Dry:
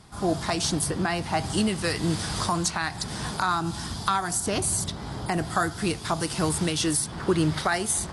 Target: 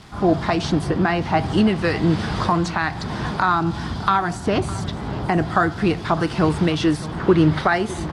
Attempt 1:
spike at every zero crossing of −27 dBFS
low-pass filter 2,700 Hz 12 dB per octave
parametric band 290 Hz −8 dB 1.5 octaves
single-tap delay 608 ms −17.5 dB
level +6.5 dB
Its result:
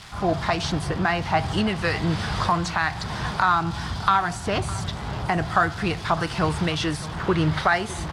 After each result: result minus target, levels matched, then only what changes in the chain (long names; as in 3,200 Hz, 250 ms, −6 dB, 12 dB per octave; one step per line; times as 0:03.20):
spike at every zero crossing: distortion +6 dB; 250 Hz band −4.0 dB
change: spike at every zero crossing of −33.5 dBFS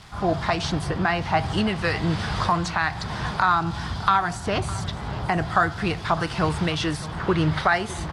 250 Hz band −4.0 dB
change: parametric band 290 Hz +2 dB 1.5 octaves